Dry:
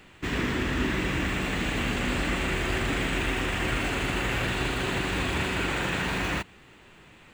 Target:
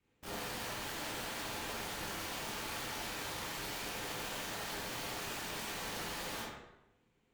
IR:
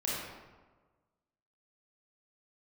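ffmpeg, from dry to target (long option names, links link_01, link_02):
-filter_complex "[0:a]afwtdn=0.0316,equalizer=frequency=2000:width=2.1:gain=-8.5,acrossover=split=930[link_01][link_02];[link_01]acrusher=samples=26:mix=1:aa=0.000001:lfo=1:lforange=26:lforate=0.84[link_03];[link_03][link_02]amix=inputs=2:normalize=0,afreqshift=-400,aeval=exprs='(mod(35.5*val(0)+1,2)-1)/35.5':channel_layout=same,aeval=exprs='val(0)*sin(2*PI*120*n/s)':channel_layout=same[link_04];[1:a]atrim=start_sample=2205,asetrate=66150,aresample=44100[link_05];[link_04][link_05]afir=irnorm=-1:irlink=0,volume=-4.5dB"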